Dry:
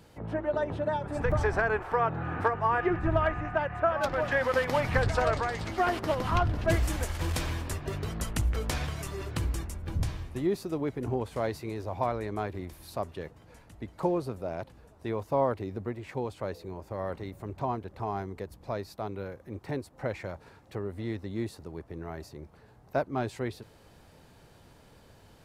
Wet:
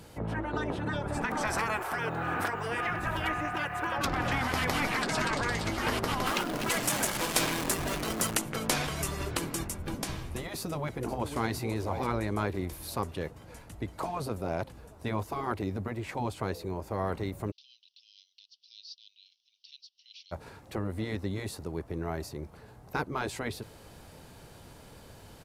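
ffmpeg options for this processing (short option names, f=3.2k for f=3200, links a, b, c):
-filter_complex "[0:a]asettb=1/sr,asplit=3[a][b][c];[a]atrim=end=1.474[d];[b]atrim=start=1.47:end=3.98,asetpts=PTS-STARTPTS,afade=t=in:d=0.004:c=qsin,afade=t=out:st=2.506:d=0.004:c=qsin,aemphasis=mode=production:type=bsi[e];[c]atrim=start=3.976[f];[d][e]acrossfade=d=0.004:c1=hsin:c2=qsin[g];[g][f]acrossfade=d=0.004:c1=qsin:c2=hsin,asettb=1/sr,asplit=3[h][i][j];[h]atrim=end=6.264[k];[i]atrim=start=6.26:end=8.37,asetpts=PTS-STARTPTS,afade=t=in:d=0.004:c=qsin,afade=t=out:st=2.106:d=0.004:c=qsin,aeval=exprs='val(0)+0.5*0.0158*sgn(val(0))':c=same[l];[j]atrim=start=8.366[m];[k][l]acrossfade=d=0.004:c1=hsin:c2=qsin[n];[n][m]acrossfade=d=0.004:c1=qsin:c2=hsin,asplit=2[o][p];[p]afade=t=in:st=10.58:d=0.01,afade=t=out:st=11.56:d=0.01,aecho=0:1:500|1000|1500|2000:0.177828|0.0711312|0.0284525|0.011381[q];[o][q]amix=inputs=2:normalize=0,asplit=3[r][s][t];[r]afade=t=out:st=17.5:d=0.02[u];[s]asuperpass=centerf=4100:order=12:qfactor=1.4,afade=t=in:st=17.5:d=0.02,afade=t=out:st=20.31:d=0.02[v];[t]afade=t=in:st=20.31:d=0.02[w];[u][v][w]amix=inputs=3:normalize=0,equalizer=f=11k:t=o:w=1.3:g=5,bandreject=f=1.8k:w=30,afftfilt=real='re*lt(hypot(re,im),0.141)':imag='im*lt(hypot(re,im),0.141)':win_size=1024:overlap=0.75,volume=5dB"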